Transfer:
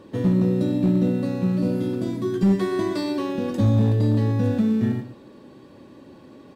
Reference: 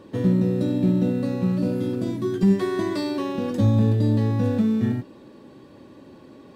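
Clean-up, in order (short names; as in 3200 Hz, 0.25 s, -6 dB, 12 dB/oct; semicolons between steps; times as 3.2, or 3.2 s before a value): clip repair -12.5 dBFS; inverse comb 0.119 s -12 dB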